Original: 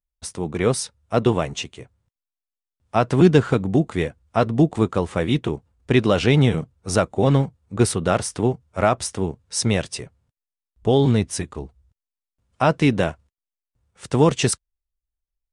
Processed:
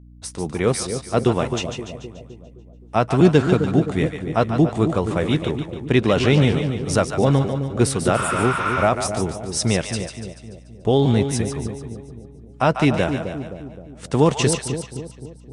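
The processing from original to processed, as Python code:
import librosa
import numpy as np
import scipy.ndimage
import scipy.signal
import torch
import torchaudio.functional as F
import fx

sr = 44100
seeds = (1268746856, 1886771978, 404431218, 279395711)

y = fx.echo_split(x, sr, split_hz=640.0, low_ms=260, high_ms=145, feedback_pct=52, wet_db=-7.5)
y = fx.add_hum(y, sr, base_hz=60, snr_db=24)
y = fx.spec_repair(y, sr, seeds[0], start_s=8.19, length_s=0.63, low_hz=900.0, high_hz=6700.0, source='both')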